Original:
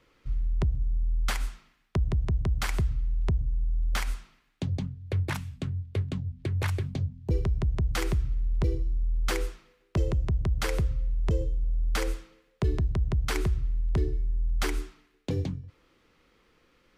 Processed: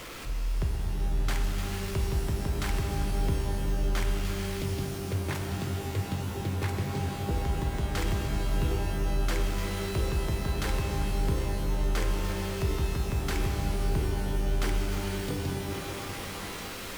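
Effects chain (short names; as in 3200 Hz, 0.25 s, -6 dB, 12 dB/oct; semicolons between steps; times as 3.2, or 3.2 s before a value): zero-crossing step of -30.5 dBFS; shimmer reverb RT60 3.4 s, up +12 st, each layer -2 dB, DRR 2.5 dB; gain -6 dB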